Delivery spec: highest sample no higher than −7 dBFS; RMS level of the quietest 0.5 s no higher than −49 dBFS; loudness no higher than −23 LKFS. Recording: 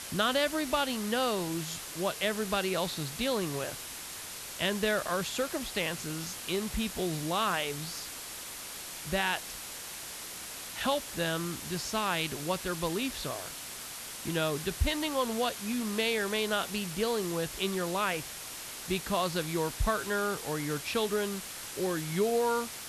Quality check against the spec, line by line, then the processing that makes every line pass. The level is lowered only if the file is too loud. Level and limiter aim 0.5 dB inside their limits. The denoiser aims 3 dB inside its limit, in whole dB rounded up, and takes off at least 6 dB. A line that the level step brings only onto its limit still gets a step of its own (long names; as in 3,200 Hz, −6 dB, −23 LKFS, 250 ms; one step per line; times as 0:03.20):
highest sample −16.0 dBFS: in spec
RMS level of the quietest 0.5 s −42 dBFS: out of spec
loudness −32.0 LKFS: in spec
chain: broadband denoise 10 dB, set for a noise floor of −42 dBFS